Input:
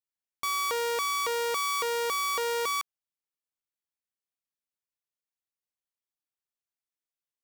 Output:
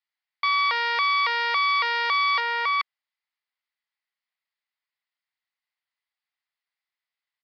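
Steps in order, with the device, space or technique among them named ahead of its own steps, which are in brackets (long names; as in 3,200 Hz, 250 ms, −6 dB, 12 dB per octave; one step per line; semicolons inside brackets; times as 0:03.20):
musical greeting card (downsampling to 11,025 Hz; high-pass filter 740 Hz 24 dB per octave; parametric band 2,000 Hz +10 dB 0.25 octaves)
0:02.40–0:02.80: parametric band 4,700 Hz −6 dB 1.4 octaves
level +7 dB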